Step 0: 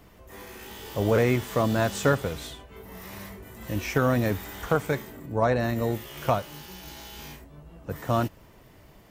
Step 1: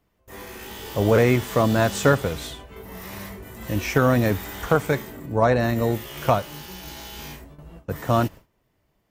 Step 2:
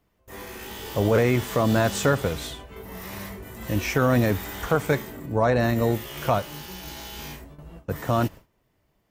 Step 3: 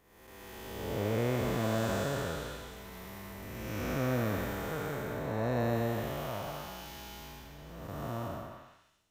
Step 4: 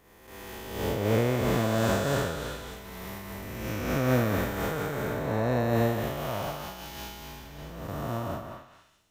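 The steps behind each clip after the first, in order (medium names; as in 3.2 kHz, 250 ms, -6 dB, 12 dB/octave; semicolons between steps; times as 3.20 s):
gate with hold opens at -38 dBFS; trim +4.5 dB
peak limiter -10.5 dBFS, peak gain reduction 4 dB
spectral blur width 466 ms; repeats whose band climbs or falls 124 ms, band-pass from 750 Hz, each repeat 0.7 oct, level -3 dB; trim -7 dB
random flutter of the level, depth 60%; trim +9 dB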